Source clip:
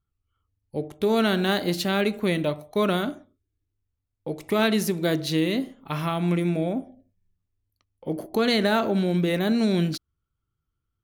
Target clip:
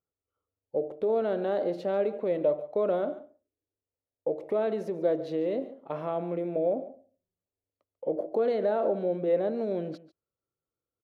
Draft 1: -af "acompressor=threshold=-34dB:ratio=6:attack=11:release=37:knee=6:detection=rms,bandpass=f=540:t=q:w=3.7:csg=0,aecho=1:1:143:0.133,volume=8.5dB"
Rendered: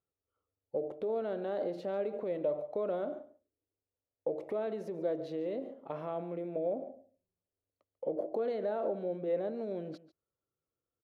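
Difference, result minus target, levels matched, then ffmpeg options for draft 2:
compressor: peak gain reduction +7.5 dB
-af "acompressor=threshold=-25dB:ratio=6:attack=11:release=37:knee=6:detection=rms,bandpass=f=540:t=q:w=3.7:csg=0,aecho=1:1:143:0.133,volume=8.5dB"

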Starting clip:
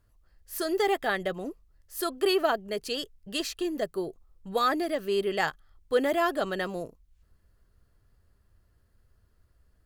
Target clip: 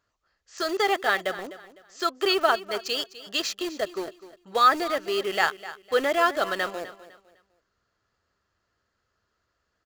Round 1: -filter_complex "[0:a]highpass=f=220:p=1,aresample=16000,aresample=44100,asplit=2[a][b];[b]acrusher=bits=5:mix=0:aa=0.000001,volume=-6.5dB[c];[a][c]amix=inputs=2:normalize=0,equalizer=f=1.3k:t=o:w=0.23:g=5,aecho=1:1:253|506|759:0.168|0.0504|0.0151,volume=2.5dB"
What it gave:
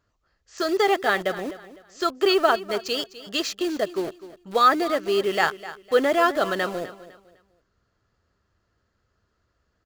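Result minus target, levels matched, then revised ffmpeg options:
250 Hz band +4.0 dB
-filter_complex "[0:a]highpass=f=720:p=1,aresample=16000,aresample=44100,asplit=2[a][b];[b]acrusher=bits=5:mix=0:aa=0.000001,volume=-6.5dB[c];[a][c]amix=inputs=2:normalize=0,equalizer=f=1.3k:t=o:w=0.23:g=5,aecho=1:1:253|506|759:0.168|0.0504|0.0151,volume=2.5dB"

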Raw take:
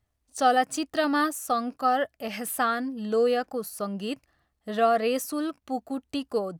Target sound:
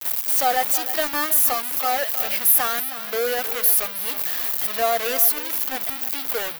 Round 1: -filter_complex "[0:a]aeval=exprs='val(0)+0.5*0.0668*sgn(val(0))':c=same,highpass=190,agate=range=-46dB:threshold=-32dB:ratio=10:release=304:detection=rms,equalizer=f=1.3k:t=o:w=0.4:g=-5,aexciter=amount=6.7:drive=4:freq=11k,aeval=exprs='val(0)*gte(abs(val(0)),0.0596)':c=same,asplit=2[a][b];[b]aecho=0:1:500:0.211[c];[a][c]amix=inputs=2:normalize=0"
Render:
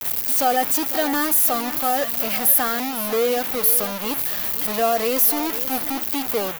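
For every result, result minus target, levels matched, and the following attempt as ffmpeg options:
echo 0.184 s late; 250 Hz band +11.5 dB
-filter_complex "[0:a]aeval=exprs='val(0)+0.5*0.0668*sgn(val(0))':c=same,highpass=190,agate=range=-46dB:threshold=-32dB:ratio=10:release=304:detection=rms,equalizer=f=1.3k:t=o:w=0.4:g=-5,aexciter=amount=6.7:drive=4:freq=11k,aeval=exprs='val(0)*gte(abs(val(0)),0.0596)':c=same,asplit=2[a][b];[b]aecho=0:1:316:0.211[c];[a][c]amix=inputs=2:normalize=0"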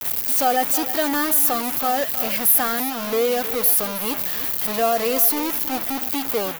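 250 Hz band +11.5 dB
-filter_complex "[0:a]aeval=exprs='val(0)+0.5*0.0668*sgn(val(0))':c=same,highpass=490,agate=range=-46dB:threshold=-32dB:ratio=10:release=304:detection=rms,equalizer=f=1.3k:t=o:w=0.4:g=-5,aexciter=amount=6.7:drive=4:freq=11k,aeval=exprs='val(0)*gte(abs(val(0)),0.0596)':c=same,asplit=2[a][b];[b]aecho=0:1:316:0.211[c];[a][c]amix=inputs=2:normalize=0"

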